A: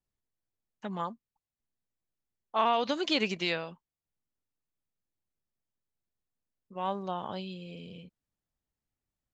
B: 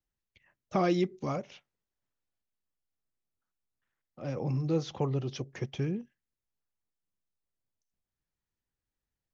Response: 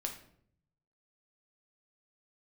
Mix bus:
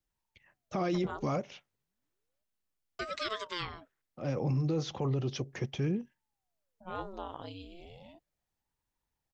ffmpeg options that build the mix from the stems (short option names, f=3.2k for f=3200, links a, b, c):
-filter_complex "[0:a]aeval=exprs='val(0)*sin(2*PI*510*n/s+510*0.85/0.34*sin(2*PI*0.34*n/s))':c=same,adelay=100,volume=-3.5dB,asplit=3[a][b][c];[a]atrim=end=2.44,asetpts=PTS-STARTPTS,afade=t=out:st=2.436:d=0.004:c=hsin[d];[b]atrim=start=2.44:end=2.99,asetpts=PTS-STARTPTS,volume=0[e];[c]atrim=start=2.99,asetpts=PTS-STARTPTS,afade=t=in:d=0.004:c=hsin[f];[d][e][f]concat=n=3:v=0:a=1[g];[1:a]volume=2dB[h];[g][h]amix=inputs=2:normalize=0,alimiter=limit=-23.5dB:level=0:latency=1:release=13"